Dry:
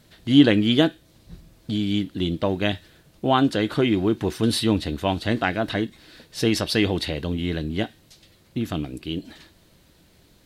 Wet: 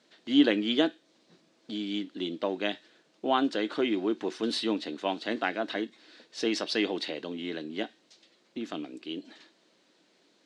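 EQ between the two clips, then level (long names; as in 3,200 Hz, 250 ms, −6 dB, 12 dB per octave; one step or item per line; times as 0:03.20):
high-pass filter 250 Hz 24 dB per octave
low-pass filter 7,100 Hz 24 dB per octave
−6.0 dB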